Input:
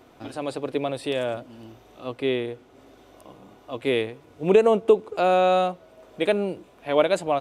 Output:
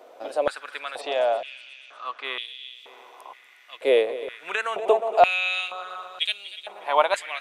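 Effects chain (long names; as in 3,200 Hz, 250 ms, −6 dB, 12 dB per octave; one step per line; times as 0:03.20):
0:01.01–0:02.25: elliptic low-pass filter 6,800 Hz
echo machine with several playback heads 120 ms, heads second and third, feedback 56%, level −15.5 dB
high-pass on a step sequencer 2.1 Hz 550–3,200 Hz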